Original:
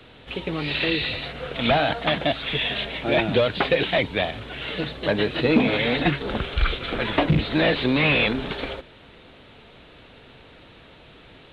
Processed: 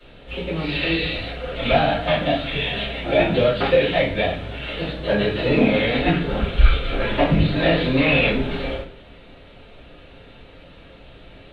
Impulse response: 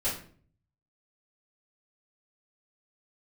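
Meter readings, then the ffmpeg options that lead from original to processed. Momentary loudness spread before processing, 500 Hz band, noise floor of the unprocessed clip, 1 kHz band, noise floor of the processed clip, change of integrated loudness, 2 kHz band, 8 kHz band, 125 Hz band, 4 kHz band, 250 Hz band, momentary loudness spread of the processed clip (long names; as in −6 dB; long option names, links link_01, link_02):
11 LU, +3.5 dB, −49 dBFS, +2.0 dB, −45 dBFS, +2.5 dB, +1.0 dB, can't be measured, +4.0 dB, −0.5 dB, +2.5 dB, 11 LU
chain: -filter_complex "[1:a]atrim=start_sample=2205[link_01];[0:a][link_01]afir=irnorm=-1:irlink=0,volume=-6dB"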